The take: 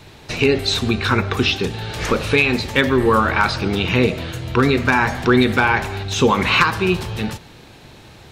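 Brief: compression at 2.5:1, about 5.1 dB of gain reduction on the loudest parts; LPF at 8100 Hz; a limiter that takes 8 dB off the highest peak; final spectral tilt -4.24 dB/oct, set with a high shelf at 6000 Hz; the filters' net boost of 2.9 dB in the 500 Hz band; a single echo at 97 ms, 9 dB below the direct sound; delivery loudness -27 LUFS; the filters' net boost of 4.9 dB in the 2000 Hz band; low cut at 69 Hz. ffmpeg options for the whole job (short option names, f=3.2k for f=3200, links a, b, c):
-af "highpass=69,lowpass=8.1k,equalizer=f=500:t=o:g=3.5,equalizer=f=2k:t=o:g=5.5,highshelf=f=6k:g=7.5,acompressor=threshold=-15dB:ratio=2.5,alimiter=limit=-8.5dB:level=0:latency=1,aecho=1:1:97:0.355,volume=-7.5dB"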